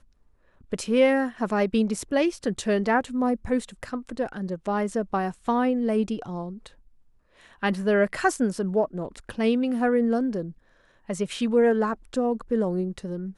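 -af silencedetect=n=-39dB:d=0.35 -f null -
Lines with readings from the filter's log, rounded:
silence_start: 0.00
silence_end: 0.72 | silence_duration: 0.72
silence_start: 6.67
silence_end: 7.53 | silence_duration: 0.86
silence_start: 10.51
silence_end: 11.09 | silence_duration: 0.58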